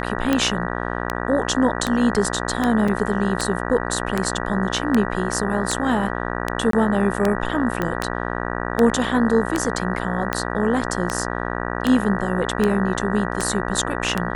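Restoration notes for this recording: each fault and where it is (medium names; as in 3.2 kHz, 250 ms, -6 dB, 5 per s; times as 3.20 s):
buzz 60 Hz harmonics 32 -26 dBFS
tick 78 rpm -6 dBFS
2.88 s: dropout 3.9 ms
6.71–6.73 s: dropout 23 ms
7.82 s: pop -11 dBFS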